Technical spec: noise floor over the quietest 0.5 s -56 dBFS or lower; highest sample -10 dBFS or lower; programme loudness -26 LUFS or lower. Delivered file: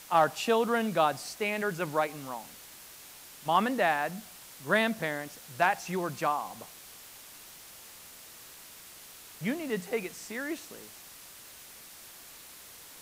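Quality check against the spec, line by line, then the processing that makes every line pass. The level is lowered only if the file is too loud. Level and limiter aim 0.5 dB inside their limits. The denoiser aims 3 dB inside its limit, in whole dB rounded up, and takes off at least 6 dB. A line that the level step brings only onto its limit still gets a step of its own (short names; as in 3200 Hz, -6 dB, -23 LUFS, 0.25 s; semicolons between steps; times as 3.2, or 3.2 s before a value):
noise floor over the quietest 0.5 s -50 dBFS: fail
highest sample -12.5 dBFS: OK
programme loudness -30.5 LUFS: OK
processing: denoiser 9 dB, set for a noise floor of -50 dBFS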